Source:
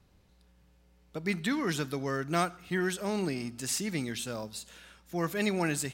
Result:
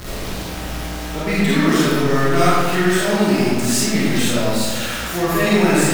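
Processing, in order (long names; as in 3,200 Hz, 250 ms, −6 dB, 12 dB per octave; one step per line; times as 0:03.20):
converter with a step at zero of −30.5 dBFS
comb and all-pass reverb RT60 1.7 s, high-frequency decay 0.6×, pre-delay 5 ms, DRR −9 dB
level +2.5 dB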